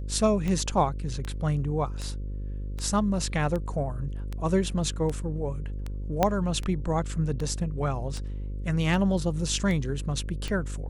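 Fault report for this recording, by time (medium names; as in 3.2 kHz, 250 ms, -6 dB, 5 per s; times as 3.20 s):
buzz 50 Hz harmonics 11 -33 dBFS
tick 78 rpm -20 dBFS
6.23 s: pop -8 dBFS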